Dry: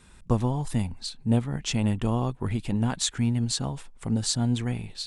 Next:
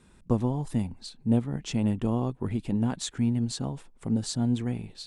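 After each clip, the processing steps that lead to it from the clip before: bell 290 Hz +8.5 dB 2.7 oct; gain -7.5 dB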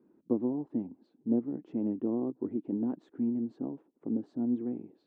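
ladder band-pass 340 Hz, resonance 60%; gain +7 dB

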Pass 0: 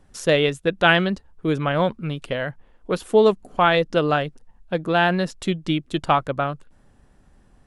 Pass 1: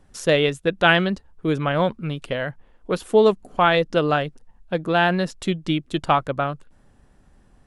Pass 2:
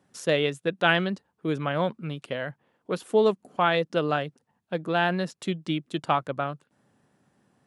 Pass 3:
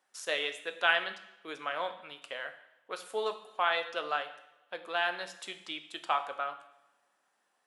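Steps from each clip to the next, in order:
nothing audible
HPF 120 Hz 24 dB/oct; gain -5.5 dB
HPF 840 Hz 12 dB/oct; two-slope reverb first 0.79 s, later 2.3 s, from -25 dB, DRR 7.5 dB; gain -3.5 dB

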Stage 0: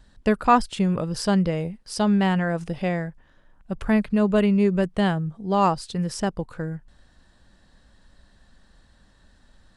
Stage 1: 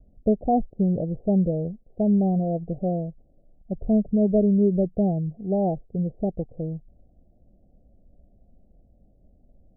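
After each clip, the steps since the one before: steep low-pass 740 Hz 96 dB/oct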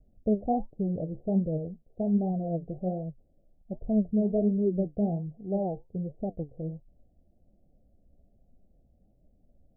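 flange 1.3 Hz, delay 6 ms, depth 9.5 ms, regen +59%; gain -2 dB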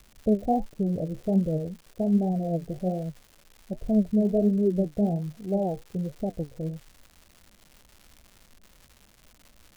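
crackle 310/s -44 dBFS; gain +3 dB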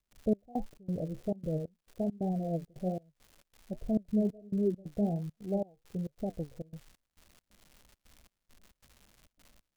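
step gate ".xx..xx.xxxx" 136 bpm -24 dB; gain -5.5 dB

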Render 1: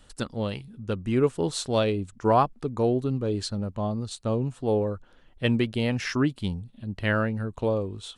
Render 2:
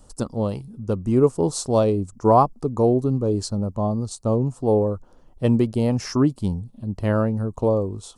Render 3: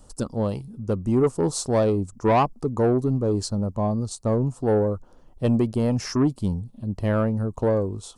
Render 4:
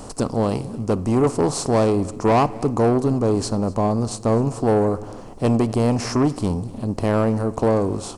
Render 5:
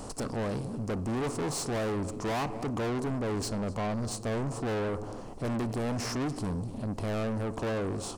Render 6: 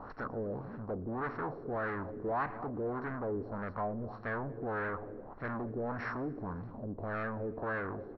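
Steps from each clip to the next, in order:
band shelf 2400 Hz -14.5 dB; gain +5.5 dB
soft clip -13 dBFS, distortion -15 dB
per-bin compression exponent 0.6; echo 0.249 s -22 dB; on a send at -16.5 dB: reverb RT60 1.1 s, pre-delay 3 ms
soft clip -25 dBFS, distortion -7 dB; gain -4 dB
rippled Chebyshev low-pass 5700 Hz, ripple 9 dB; LFO low-pass sine 1.7 Hz 410–1900 Hz; feedback echo 0.116 s, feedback 60%, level -24 dB

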